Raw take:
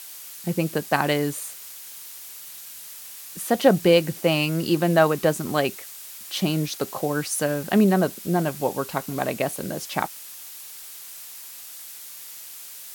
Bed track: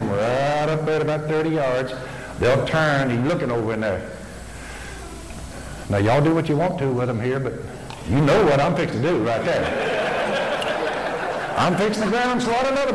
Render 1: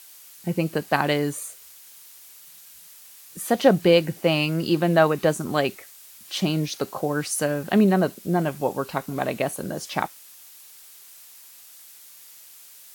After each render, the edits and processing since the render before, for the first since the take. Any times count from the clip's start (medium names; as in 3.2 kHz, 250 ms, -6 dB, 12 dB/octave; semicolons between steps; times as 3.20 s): noise print and reduce 7 dB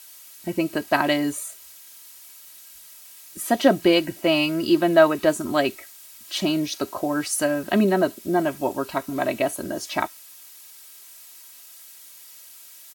band-stop 440 Hz, Q 13; comb 3.1 ms, depth 65%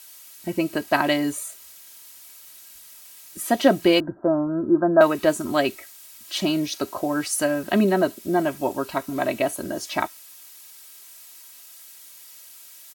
1.24–3.40 s: small samples zeroed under -52.5 dBFS; 4.00–5.01 s: steep low-pass 1.6 kHz 96 dB/octave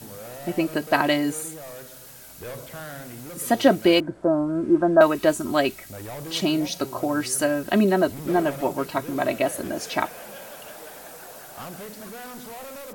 add bed track -19 dB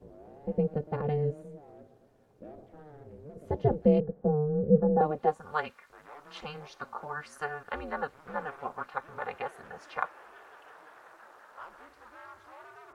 band-pass sweep 330 Hz -> 1.2 kHz, 4.90–5.52 s; ring modulator 150 Hz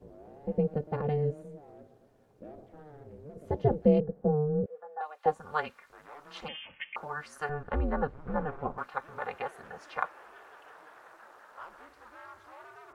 4.66–5.26 s: Bessel high-pass 1.3 kHz, order 4; 6.48–6.96 s: frequency inversion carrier 3.3 kHz; 7.49–8.78 s: tilt EQ -4.5 dB/octave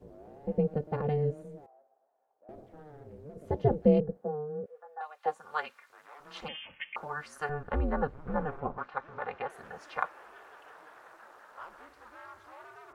1.66–2.49 s: ladder band-pass 850 Hz, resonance 60%; 4.17–6.20 s: high-pass 840 Hz 6 dB/octave; 8.60–9.50 s: distance through air 150 m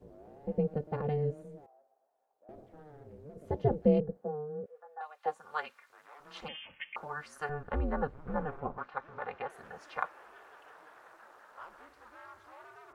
trim -2.5 dB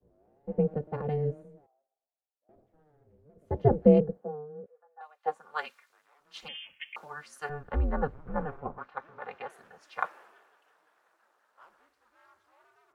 three bands expanded up and down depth 70%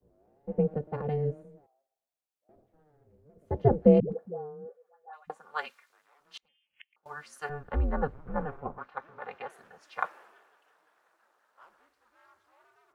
4.00–5.30 s: phase dispersion highs, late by 125 ms, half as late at 470 Hz; 6.37–7.06 s: inverted gate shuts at -36 dBFS, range -32 dB